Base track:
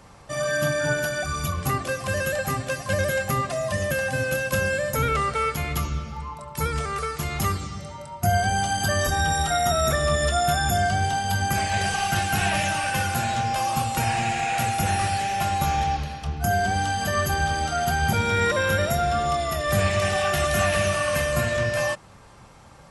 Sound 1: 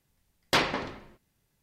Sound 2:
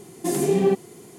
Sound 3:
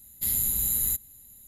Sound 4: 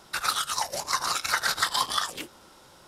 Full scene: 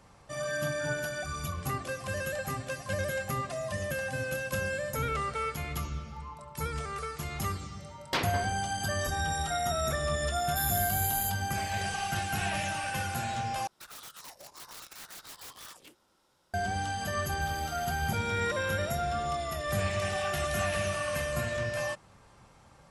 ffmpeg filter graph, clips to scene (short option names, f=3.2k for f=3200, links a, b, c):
-filter_complex "[3:a]asplit=2[a][b];[0:a]volume=-8.5dB[c];[4:a]aeval=exprs='(mod(14.1*val(0)+1,2)-1)/14.1':c=same[d];[b]equalizer=f=7.5k:w=0.34:g=-14.5[e];[c]asplit=2[f][g];[f]atrim=end=13.674[h];[d]atrim=end=2.87,asetpts=PTS-STARTPTS,volume=-17dB[i];[g]atrim=start=16.536[j];[1:a]atrim=end=1.62,asetpts=PTS-STARTPTS,volume=-6.5dB,afade=t=in:d=0.004:c=hsin,afade=t=out:st=1.616:d=0.004:c=hsin,adelay=7600[k];[a]atrim=end=1.47,asetpts=PTS-STARTPTS,volume=-6.5dB,afade=t=in:d=0.004:c=hsin,afade=t=out:st=1.466:d=0.004:c=hsin,adelay=455994S[l];[e]atrim=end=1.47,asetpts=PTS-STARTPTS,volume=-17dB,afade=t=in:d=0.004:c=hsin,afade=t=out:st=1.466:d=0.004:c=hsin,adelay=17190[m];[h][i]acrossfade=d=0.004:c1=hsin:c2=hsin[n];[n][j]acrossfade=d=0.004:c1=hsin:c2=hsin[o];[o][k][l][m]amix=inputs=4:normalize=0"